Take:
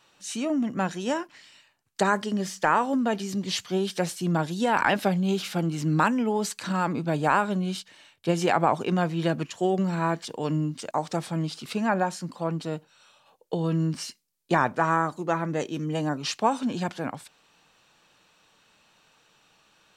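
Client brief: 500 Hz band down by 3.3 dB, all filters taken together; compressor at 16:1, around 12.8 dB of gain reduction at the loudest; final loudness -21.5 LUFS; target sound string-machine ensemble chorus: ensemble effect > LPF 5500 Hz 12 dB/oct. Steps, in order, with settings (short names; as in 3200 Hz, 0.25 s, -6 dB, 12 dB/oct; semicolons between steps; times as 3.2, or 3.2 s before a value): bell 500 Hz -4.5 dB; compressor 16:1, threshold -30 dBFS; ensemble effect; LPF 5500 Hz 12 dB/oct; gain +17.5 dB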